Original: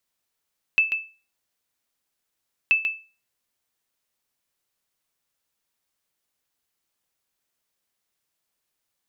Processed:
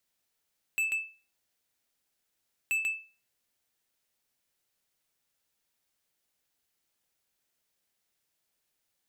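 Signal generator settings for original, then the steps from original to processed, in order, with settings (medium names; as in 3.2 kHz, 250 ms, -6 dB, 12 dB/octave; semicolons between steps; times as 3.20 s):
sonar ping 2.63 kHz, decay 0.33 s, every 1.93 s, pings 2, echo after 0.14 s, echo -7 dB -11 dBFS
peaking EQ 1.1 kHz -4.5 dB 0.37 oct; saturation -27 dBFS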